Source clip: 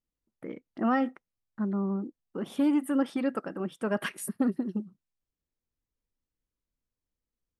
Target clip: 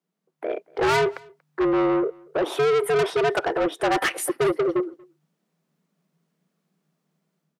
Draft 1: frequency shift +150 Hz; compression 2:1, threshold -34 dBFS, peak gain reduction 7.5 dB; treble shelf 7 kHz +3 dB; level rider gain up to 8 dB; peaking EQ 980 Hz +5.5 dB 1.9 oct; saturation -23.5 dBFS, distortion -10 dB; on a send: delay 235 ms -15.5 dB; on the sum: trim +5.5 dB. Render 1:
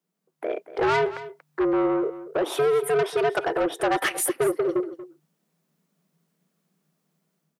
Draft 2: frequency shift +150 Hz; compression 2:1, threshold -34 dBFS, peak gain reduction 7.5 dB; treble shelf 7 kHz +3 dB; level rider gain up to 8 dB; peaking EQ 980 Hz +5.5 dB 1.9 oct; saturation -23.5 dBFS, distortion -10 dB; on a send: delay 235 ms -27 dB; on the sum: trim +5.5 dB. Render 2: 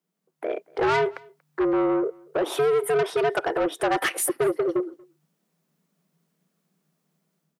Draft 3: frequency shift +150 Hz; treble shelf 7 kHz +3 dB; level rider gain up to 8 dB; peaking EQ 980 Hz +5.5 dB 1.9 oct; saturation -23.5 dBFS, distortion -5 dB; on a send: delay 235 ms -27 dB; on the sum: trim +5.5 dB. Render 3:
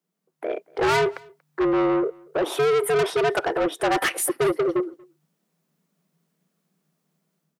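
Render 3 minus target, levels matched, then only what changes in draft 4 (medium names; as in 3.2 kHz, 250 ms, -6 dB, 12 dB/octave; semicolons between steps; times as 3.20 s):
8 kHz band +3.5 dB
change: treble shelf 7 kHz -5.5 dB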